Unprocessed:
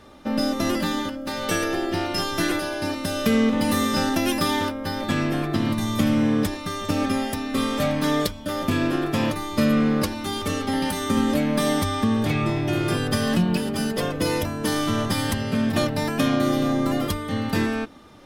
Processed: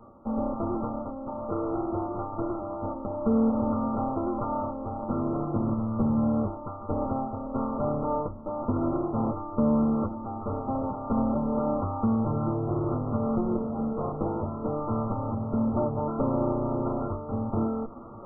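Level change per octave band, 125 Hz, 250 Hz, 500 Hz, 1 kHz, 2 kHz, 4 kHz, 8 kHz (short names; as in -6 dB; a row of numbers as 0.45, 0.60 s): -4.5 dB, -5.0 dB, -3.5 dB, -3.5 dB, under -30 dB, under -40 dB, under -40 dB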